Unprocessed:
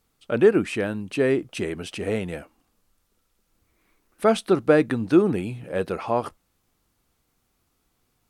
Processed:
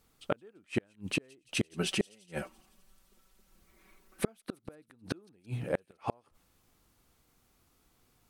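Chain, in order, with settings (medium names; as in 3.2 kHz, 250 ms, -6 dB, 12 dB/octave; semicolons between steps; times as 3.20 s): 1.74–4.28 s: comb 5.3 ms, depth 77%; inverted gate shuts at -18 dBFS, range -40 dB; feedback echo behind a high-pass 170 ms, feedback 64%, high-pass 4.5 kHz, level -20 dB; trim +1.5 dB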